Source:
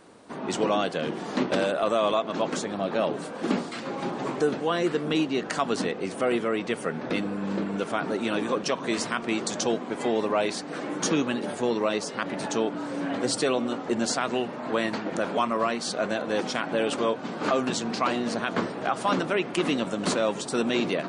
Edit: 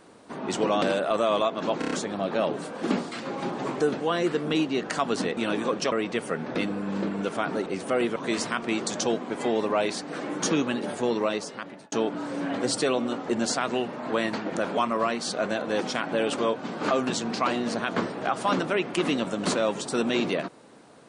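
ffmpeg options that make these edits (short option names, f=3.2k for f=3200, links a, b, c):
-filter_complex "[0:a]asplit=11[a][b][c][d][e][f][g][h][i][j][k];[a]atrim=end=0.822[l];[b]atrim=start=1.538:end=2.542[m];[c]atrim=start=2.508:end=2.542[n];[d]atrim=start=2.508:end=2.542[o];[e]atrim=start=2.508:end=2.542[p];[f]atrim=start=2.508:end=5.972[q];[g]atrim=start=8.208:end=8.762[r];[h]atrim=start=6.468:end=8.212[s];[i]atrim=start=5.968:end=6.472[t];[j]atrim=start=8.758:end=12.52,asetpts=PTS-STARTPTS,afade=t=out:st=3.072:d=0.69[u];[k]atrim=start=12.52,asetpts=PTS-STARTPTS,afade=t=in:d=0.004:c=hsin[v];[l][m]acrossfade=d=0.004:c1=hsin:c2=hsin[w];[w][n]acrossfade=d=0.004:c1=hsin:c2=hsin[x];[x][o]acrossfade=d=0.004:c1=hsin:c2=hsin[y];[y][p]acrossfade=d=0.004:c1=hsin:c2=hsin[z];[z][q]acrossfade=d=0.004:c1=hsin:c2=hsin[aa];[aa][r]acrossfade=d=0.004:c1=hsin:c2=hsin[ab];[ab][s]acrossfade=d=0.004:c1=hsin:c2=hsin[ac];[ac][t]acrossfade=d=0.004:c1=hsin:c2=hsin[ad];[u][v]concat=n=2:v=0:a=1[ae];[ad][ae]acrossfade=d=0.004:c1=hsin:c2=hsin"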